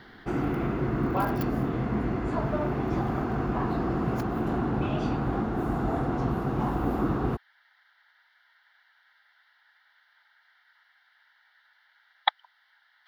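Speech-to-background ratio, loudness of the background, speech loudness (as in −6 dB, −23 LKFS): −2.5 dB, −28.5 LKFS, −31.0 LKFS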